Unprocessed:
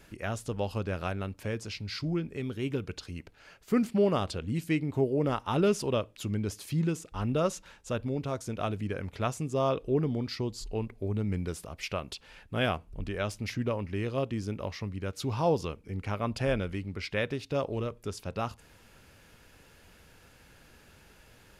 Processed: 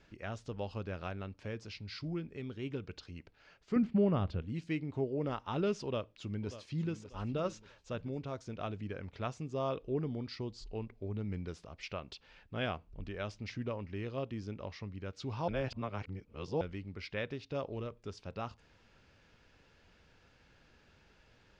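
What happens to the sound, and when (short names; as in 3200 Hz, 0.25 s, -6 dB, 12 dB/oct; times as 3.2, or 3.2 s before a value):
3.76–4.42 tone controls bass +10 dB, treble -14 dB
5.83–7 echo throw 0.59 s, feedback 35%, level -13.5 dB
15.48–16.61 reverse
whole clip: LPF 5800 Hz 24 dB/oct; gain -7.5 dB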